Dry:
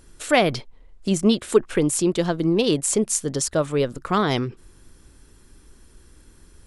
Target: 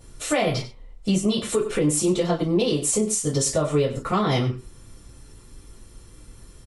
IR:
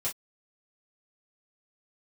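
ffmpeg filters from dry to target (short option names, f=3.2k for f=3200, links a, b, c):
-filter_complex "[0:a]bandreject=f=1.6k:w=16,asplit=2[a][b];[b]adelay=93.29,volume=-15dB,highshelf=f=4k:g=-2.1[c];[a][c]amix=inputs=2:normalize=0[d];[1:a]atrim=start_sample=2205[e];[d][e]afir=irnorm=-1:irlink=0,alimiter=limit=-12.5dB:level=0:latency=1:release=171"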